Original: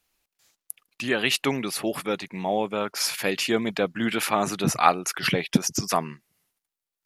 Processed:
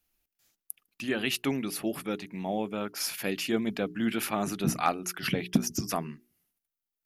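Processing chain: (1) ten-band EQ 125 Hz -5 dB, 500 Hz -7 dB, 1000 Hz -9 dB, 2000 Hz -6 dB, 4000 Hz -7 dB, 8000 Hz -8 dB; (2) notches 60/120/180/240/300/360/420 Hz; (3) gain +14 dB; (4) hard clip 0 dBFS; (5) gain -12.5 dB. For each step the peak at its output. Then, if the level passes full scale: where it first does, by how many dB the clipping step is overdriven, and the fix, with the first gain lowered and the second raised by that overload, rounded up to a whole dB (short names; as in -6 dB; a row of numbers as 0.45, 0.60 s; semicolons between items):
-9.5, -10.5, +3.5, 0.0, -12.5 dBFS; step 3, 3.5 dB; step 3 +10 dB, step 5 -8.5 dB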